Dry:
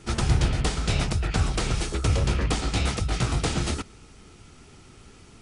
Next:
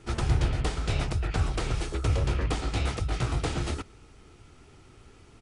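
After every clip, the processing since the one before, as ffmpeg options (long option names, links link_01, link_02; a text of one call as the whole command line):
ffmpeg -i in.wav -af "firequalizer=gain_entry='entry(120,0);entry(190,-6);entry(310,0);entry(5500,-6)':delay=0.05:min_phase=1,volume=-2.5dB" out.wav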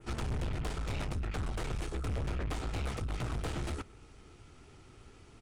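ffmpeg -i in.wav -af "aeval=exprs='(tanh(35.5*val(0)+0.4)-tanh(0.4))/35.5':channel_layout=same,adynamicequalizer=threshold=0.00112:dfrequency=4800:dqfactor=1:tfrequency=4800:tqfactor=1:attack=5:release=100:ratio=0.375:range=2:mode=cutabove:tftype=bell,volume=-1dB" out.wav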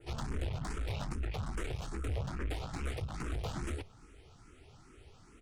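ffmpeg -i in.wav -filter_complex "[0:a]asplit=2[link_01][link_02];[link_02]afreqshift=2.4[link_03];[link_01][link_03]amix=inputs=2:normalize=1,volume=1dB" out.wav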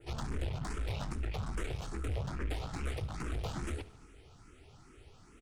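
ffmpeg -i in.wav -af "aecho=1:1:73|146|219|292|365:0.126|0.0743|0.0438|0.0259|0.0153" out.wav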